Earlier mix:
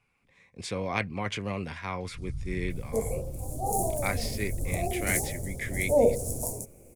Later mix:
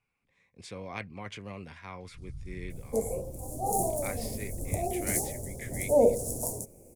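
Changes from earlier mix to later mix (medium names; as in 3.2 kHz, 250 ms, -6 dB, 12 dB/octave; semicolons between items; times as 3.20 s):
speech -9.0 dB; first sound -6.5 dB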